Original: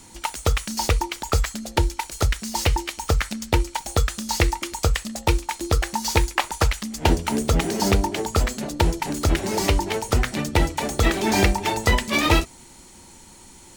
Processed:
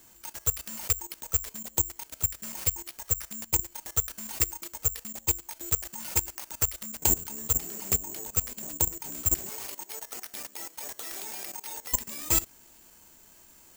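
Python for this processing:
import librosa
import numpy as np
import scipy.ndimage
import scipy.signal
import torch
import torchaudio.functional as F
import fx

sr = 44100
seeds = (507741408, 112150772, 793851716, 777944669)

y = fx.bessel_highpass(x, sr, hz=640.0, order=2, at=(9.49, 11.93))
y = fx.level_steps(y, sr, step_db=17)
y = (np.kron(y[::6], np.eye(6)[0]) * 6)[:len(y)]
y = F.gain(torch.from_numpy(y), -12.0).numpy()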